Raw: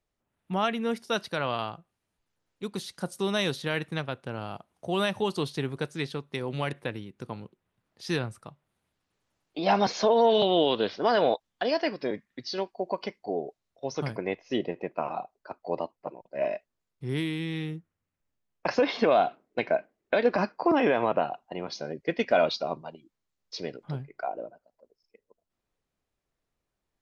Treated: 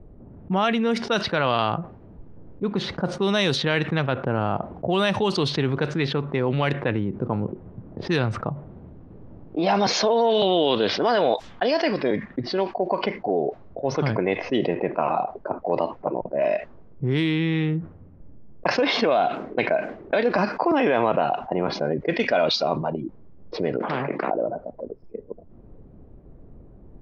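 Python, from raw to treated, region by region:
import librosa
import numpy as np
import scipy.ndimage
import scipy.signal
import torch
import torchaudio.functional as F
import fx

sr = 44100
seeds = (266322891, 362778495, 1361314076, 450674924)

y = fx.chain(x, sr, fx.highpass(hz=230.0, slope=24),
    fx.peak_eq(hz=1700.0, db=6.0, octaves=1.5),
    fx.spectral_comp(ratio=10.0), at=(23.8, 24.31))
y = fx.env_lowpass(y, sr, base_hz=360.0, full_db=-23.0)
y = scipy.signal.sosfilt(scipy.signal.butter(2, 6400.0, 'lowpass', fs=sr, output='sos'), y)
y = fx.env_flatten(y, sr, amount_pct=70)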